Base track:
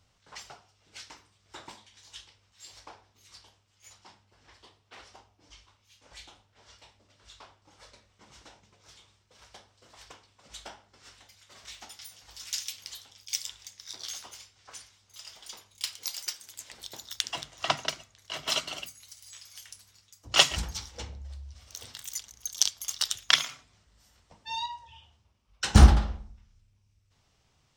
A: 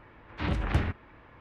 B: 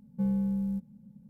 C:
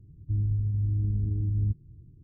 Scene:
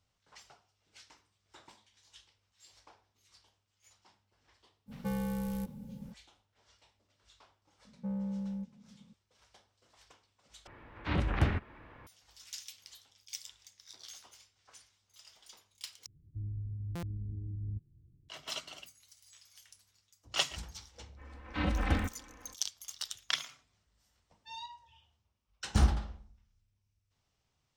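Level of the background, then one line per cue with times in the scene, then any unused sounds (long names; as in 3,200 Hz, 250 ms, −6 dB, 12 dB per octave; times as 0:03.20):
base track −11 dB
0:04.86: mix in B −3 dB, fades 0.05 s + every bin compressed towards the loudest bin 2 to 1
0:07.85: mix in B −6.5 dB + mid-hump overdrive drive 16 dB, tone 1,300 Hz, clips at −22.5 dBFS
0:10.67: overwrite with A −1.5 dB + upward compression, threshold −48 dBFS
0:16.06: overwrite with C −12.5 dB + buffer that repeats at 0:00.89, samples 256, times 13
0:21.16: mix in A −3.5 dB, fades 0.05 s + comb filter 3.9 ms, depth 82%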